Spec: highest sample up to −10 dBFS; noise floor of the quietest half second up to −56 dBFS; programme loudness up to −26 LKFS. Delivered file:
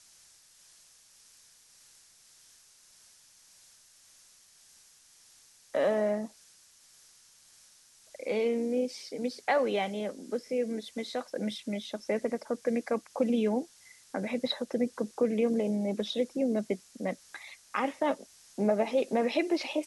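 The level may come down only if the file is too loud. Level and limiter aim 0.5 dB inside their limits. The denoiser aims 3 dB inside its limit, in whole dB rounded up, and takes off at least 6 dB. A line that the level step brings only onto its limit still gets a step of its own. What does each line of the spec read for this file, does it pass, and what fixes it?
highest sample −15.5 dBFS: in spec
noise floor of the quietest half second −60 dBFS: in spec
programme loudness −31.5 LKFS: in spec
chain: no processing needed

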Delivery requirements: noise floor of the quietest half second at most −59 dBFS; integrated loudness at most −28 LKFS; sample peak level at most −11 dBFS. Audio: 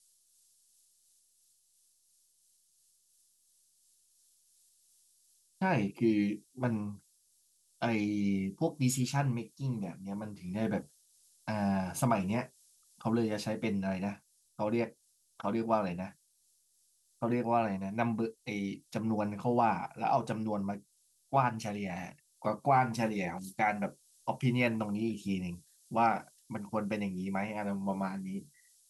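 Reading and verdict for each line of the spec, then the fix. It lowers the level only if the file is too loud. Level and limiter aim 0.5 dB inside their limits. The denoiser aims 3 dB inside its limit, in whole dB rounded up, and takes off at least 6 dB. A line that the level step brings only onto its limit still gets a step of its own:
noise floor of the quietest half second −71 dBFS: in spec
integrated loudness −33.5 LKFS: in spec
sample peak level −15.0 dBFS: in spec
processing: no processing needed

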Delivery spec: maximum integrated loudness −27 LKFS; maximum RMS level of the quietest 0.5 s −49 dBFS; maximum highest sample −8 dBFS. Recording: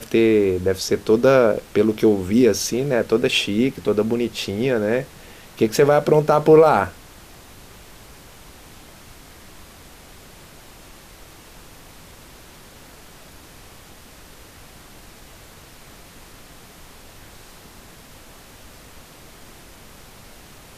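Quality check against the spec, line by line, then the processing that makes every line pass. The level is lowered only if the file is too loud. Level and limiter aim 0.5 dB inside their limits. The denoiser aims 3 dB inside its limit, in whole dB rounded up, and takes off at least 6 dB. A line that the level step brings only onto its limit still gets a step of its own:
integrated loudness −18.0 LKFS: out of spec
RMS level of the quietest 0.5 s −44 dBFS: out of spec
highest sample −3.5 dBFS: out of spec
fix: level −9.5 dB

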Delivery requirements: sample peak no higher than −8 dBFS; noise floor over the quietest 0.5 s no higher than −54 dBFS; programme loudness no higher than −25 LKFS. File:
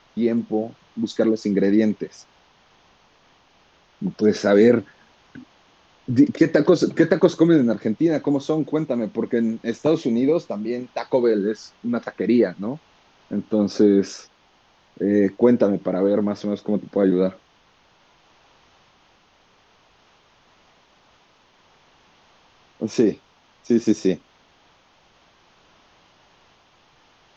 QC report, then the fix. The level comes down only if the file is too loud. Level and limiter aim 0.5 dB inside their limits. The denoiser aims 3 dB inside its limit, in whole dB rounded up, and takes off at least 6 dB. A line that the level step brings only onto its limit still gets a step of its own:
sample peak −2.5 dBFS: out of spec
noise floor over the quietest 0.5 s −58 dBFS: in spec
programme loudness −21.0 LKFS: out of spec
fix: level −4.5 dB
brickwall limiter −8.5 dBFS

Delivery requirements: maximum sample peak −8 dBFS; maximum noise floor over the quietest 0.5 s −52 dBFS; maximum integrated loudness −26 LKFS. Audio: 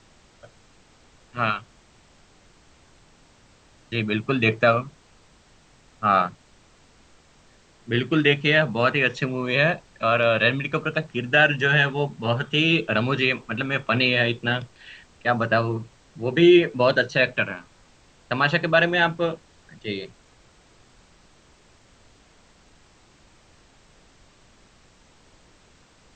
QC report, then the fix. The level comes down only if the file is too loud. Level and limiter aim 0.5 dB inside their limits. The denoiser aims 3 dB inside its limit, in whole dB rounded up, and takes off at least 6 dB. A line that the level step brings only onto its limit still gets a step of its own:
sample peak −3.5 dBFS: out of spec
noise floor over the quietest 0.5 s −56 dBFS: in spec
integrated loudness −21.5 LKFS: out of spec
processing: level −5 dB

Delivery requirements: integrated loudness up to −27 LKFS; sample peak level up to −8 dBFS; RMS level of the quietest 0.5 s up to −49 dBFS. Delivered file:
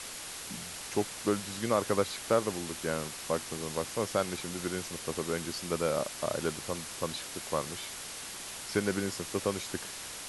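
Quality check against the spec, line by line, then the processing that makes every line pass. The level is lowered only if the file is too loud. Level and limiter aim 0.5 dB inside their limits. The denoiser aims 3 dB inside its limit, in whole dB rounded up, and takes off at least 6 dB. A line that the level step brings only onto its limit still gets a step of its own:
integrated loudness −33.5 LKFS: in spec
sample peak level −12.5 dBFS: in spec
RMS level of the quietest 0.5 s −42 dBFS: out of spec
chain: broadband denoise 10 dB, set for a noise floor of −42 dBFS

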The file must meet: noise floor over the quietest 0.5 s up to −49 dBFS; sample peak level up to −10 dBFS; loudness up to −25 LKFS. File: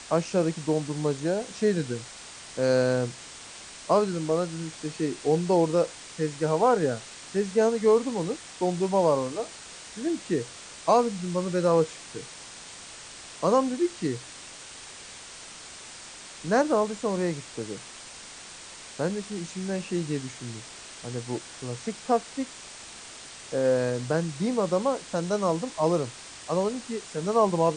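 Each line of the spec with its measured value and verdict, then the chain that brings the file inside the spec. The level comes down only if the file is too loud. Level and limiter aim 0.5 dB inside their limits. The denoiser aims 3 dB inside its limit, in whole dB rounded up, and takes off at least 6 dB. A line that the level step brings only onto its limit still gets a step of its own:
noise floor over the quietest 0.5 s −44 dBFS: out of spec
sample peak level −8.5 dBFS: out of spec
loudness −27.0 LKFS: in spec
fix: broadband denoise 8 dB, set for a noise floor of −44 dBFS
brickwall limiter −10.5 dBFS

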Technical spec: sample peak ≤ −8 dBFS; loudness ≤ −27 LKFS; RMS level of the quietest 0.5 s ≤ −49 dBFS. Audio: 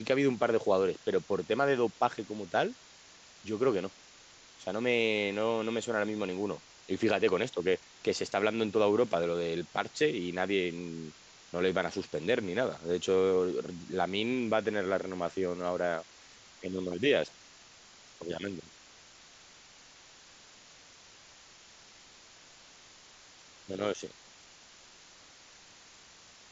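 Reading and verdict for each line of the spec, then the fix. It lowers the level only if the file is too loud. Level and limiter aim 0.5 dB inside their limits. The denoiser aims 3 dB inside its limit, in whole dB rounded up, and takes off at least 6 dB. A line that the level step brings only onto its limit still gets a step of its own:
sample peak −13.0 dBFS: in spec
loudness −31.5 LKFS: in spec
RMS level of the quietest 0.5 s −56 dBFS: in spec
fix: no processing needed

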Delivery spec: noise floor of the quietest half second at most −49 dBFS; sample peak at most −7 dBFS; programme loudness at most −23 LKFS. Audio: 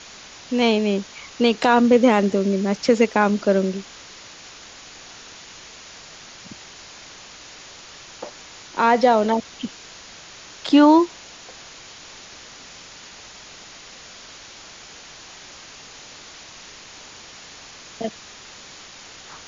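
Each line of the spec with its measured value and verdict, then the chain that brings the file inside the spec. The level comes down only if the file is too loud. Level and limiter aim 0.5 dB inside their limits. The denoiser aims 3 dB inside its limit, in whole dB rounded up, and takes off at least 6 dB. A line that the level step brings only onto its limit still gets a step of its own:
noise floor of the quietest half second −42 dBFS: out of spec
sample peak −5.0 dBFS: out of spec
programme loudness −19.0 LKFS: out of spec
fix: broadband denoise 6 dB, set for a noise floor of −42 dBFS
level −4.5 dB

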